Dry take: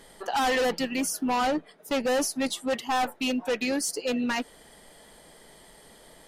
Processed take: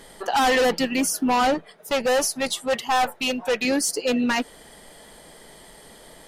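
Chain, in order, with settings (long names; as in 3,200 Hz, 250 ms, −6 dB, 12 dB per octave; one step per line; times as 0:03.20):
0:01.54–0:03.65: parametric band 280 Hz −9.5 dB 0.52 octaves
level +5.5 dB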